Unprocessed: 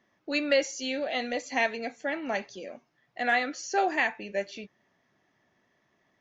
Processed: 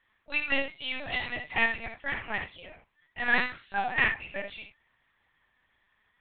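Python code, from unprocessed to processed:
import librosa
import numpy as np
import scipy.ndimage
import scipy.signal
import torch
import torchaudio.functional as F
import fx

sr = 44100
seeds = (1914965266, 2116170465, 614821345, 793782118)

p1 = scipy.signal.sosfilt(scipy.signal.butter(2, 1100.0, 'highpass', fs=sr, output='sos'), x)
p2 = p1 + fx.room_early_taps(p1, sr, ms=(35, 48, 70), db=(-16.5, -12.0, -7.5), dry=0)
p3 = fx.lpc_vocoder(p2, sr, seeds[0], excitation='pitch_kept', order=8)
y = p3 * 10.0 ** (2.5 / 20.0)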